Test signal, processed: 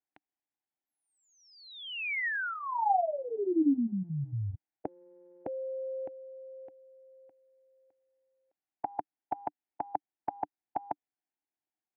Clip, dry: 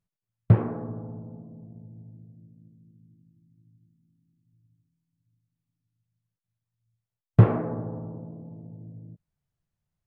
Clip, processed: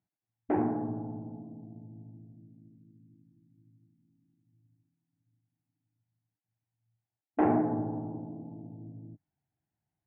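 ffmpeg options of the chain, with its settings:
-af "afftfilt=real='re*lt(hypot(re,im),0.501)':imag='im*lt(hypot(re,im),0.501)':win_size=1024:overlap=0.75,highpass=110,equalizer=f=170:t=q:w=4:g=-5,equalizer=f=300:t=q:w=4:g=9,equalizer=f=510:t=q:w=4:g=-9,equalizer=f=780:t=q:w=4:g=9,equalizer=f=1.2k:t=q:w=4:g=-10,lowpass=f=2.2k:w=0.5412,lowpass=f=2.2k:w=1.3066"

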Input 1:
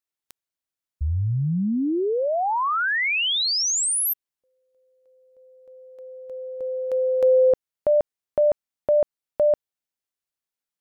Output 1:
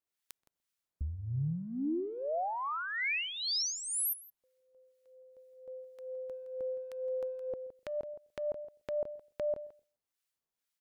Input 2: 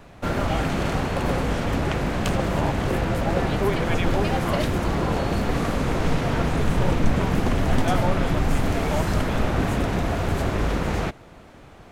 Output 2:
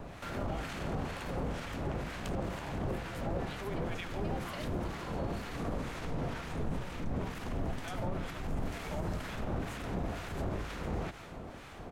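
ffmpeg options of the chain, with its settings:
-filter_complex "[0:a]acompressor=threshold=-37dB:ratio=4:attack=3.1:release=54:knee=6:detection=rms,asplit=2[a][b];[b]aecho=0:1:166:0.224[c];[a][c]amix=inputs=2:normalize=0,aeval=exprs='0.1*(cos(1*acos(clip(val(0)/0.1,-1,1)))-cos(1*PI/2))+0.00224*(cos(2*acos(clip(val(0)/0.1,-1,1)))-cos(2*PI/2))':c=same,acrossover=split=1100[d][e];[d]aeval=exprs='val(0)*(1-0.7/2+0.7/2*cos(2*PI*2.1*n/s))':c=same[f];[e]aeval=exprs='val(0)*(1-0.7/2-0.7/2*cos(2*PI*2.1*n/s))':c=same[g];[f][g]amix=inputs=2:normalize=0,asplit=2[h][i];[i]adelay=127,lowpass=f=820:p=1,volume=-23dB,asplit=2[j][k];[k]adelay=127,lowpass=f=820:p=1,volume=0.3[l];[j][l]amix=inputs=2:normalize=0[m];[h][m]amix=inputs=2:normalize=0,volume=3.5dB"

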